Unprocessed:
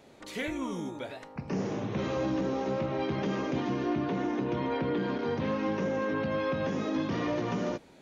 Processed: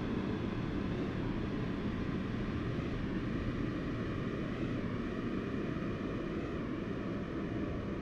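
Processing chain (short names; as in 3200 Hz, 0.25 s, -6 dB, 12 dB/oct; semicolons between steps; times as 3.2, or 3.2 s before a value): LPF 1900 Hz 6 dB/oct; band shelf 550 Hz -11.5 dB; in parallel at -9.5 dB: soft clip -37.5 dBFS, distortion -9 dB; on the sum: whisperiser; overloaded stage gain 30 dB; rotary speaker horn 0.7 Hz; Paulstretch 22×, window 0.50 s, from 7.03; record warp 33 1/3 rpm, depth 100 cents; gain -1 dB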